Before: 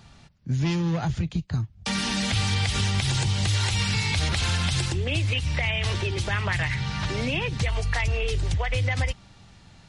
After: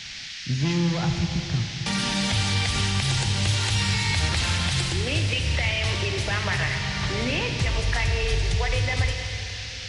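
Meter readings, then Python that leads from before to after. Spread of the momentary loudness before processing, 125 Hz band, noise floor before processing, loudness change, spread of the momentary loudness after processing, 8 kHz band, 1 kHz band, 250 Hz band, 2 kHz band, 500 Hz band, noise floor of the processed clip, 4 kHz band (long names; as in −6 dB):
5 LU, +0.5 dB, −52 dBFS, +1.5 dB, 4 LU, +2.5 dB, +1.5 dB, +1.0 dB, +2.0 dB, +1.5 dB, −36 dBFS, +3.0 dB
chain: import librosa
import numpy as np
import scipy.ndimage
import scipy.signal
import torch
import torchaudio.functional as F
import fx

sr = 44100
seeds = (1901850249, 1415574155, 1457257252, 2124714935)

y = fx.dmg_noise_band(x, sr, seeds[0], low_hz=1700.0, high_hz=5700.0, level_db=-38.0)
y = fx.rev_schroeder(y, sr, rt60_s=3.3, comb_ms=29, drr_db=4.0)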